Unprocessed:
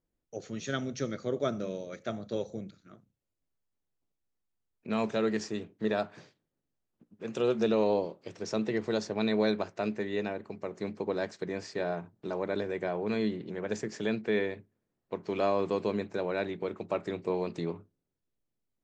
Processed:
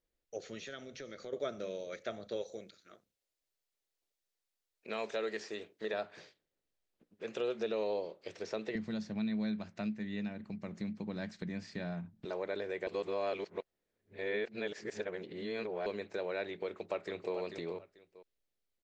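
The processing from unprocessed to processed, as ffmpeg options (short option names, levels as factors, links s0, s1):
-filter_complex "[0:a]asettb=1/sr,asplit=3[s0][s1][s2];[s0]atrim=end=0.644[s3];[s1]atrim=start=0.64:end=1.33,asetpts=PTS-STARTPTS,afade=t=in:d=0.004:c=qsin,afade=t=out:st=0.686:d=0.004:c=qsin,acompressor=threshold=0.0112:ratio=5:attack=3.2:release=140:knee=1:detection=peak[s4];[s2]atrim=start=1.326[s5];[s3][s4]acrossfade=d=0.004:c1=hsin:c2=qsin[s6];[s6][s5]acrossfade=d=0.004:c1=qsin:c2=hsin,asettb=1/sr,asplit=3[s7][s8][s9];[s7]atrim=end=2.424[s10];[s8]atrim=start=2.42:end=5.94,asetpts=PTS-STARTPTS,afade=t=in:d=0.004:c=qsin,afade=t=out:st=3.516:d=0.004:c=qsin,bass=f=250:g=-8,treble=f=4000:g=5[s11];[s9]atrim=start=5.936[s12];[s10][s11]acrossfade=d=0.004:c1=hsin:c2=qsin[s13];[s13][s12]acrossfade=d=0.004:c1=qsin:c2=hsin,asettb=1/sr,asplit=3[s14][s15][s16];[s14]atrim=end=8.754[s17];[s15]atrim=start=8.75:end=12.25,asetpts=PTS-STARTPTS,afade=t=in:d=0.004:c=qsin,afade=t=out:st=3.496:d=0.004:c=qsin,lowshelf=f=300:t=q:w=3:g=12[s18];[s16]atrim=start=12.246[s19];[s17][s18]acrossfade=d=0.004:c1=hsin:c2=qsin[s20];[s20][s19]acrossfade=d=0.004:c1=qsin:c2=hsin,asplit=2[s21][s22];[s22]afade=t=in:st=16.64:d=0.01,afade=t=out:st=17.34:d=0.01,aecho=0:1:440|880:0.375837|0.0563756[s23];[s21][s23]amix=inputs=2:normalize=0,asplit=3[s24][s25][s26];[s24]atrim=end=12.872[s27];[s25]atrim=start=12.868:end=15.862,asetpts=PTS-STARTPTS,areverse[s28];[s26]atrim=start=15.858[s29];[s27][s28]acrossfade=d=0.004:c1=hsin:c2=hsin[s30];[s30][s29]acrossfade=d=0.004:c1=hsin:c2=hsin,acompressor=threshold=0.0178:ratio=2,equalizer=f=125:t=o:w=1:g=-9,equalizer=f=250:t=o:w=1:g=-6,equalizer=f=500:t=o:w=1:g=4,equalizer=f=1000:t=o:w=1:g=-3,equalizer=f=2000:t=o:w=1:g=4,equalizer=f=4000:t=o:w=1:g=5,acrossover=split=3200[s31][s32];[s32]acompressor=threshold=0.00316:ratio=4:attack=1:release=60[s33];[s31][s33]amix=inputs=2:normalize=0,volume=0.794"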